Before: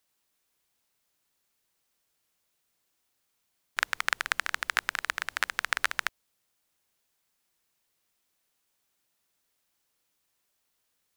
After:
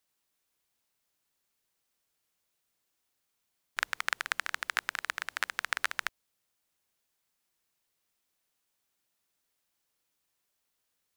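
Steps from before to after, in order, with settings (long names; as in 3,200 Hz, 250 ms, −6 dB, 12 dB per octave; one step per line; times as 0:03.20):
0:03.94–0:06.02: low-shelf EQ 79 Hz −10 dB
level −3.5 dB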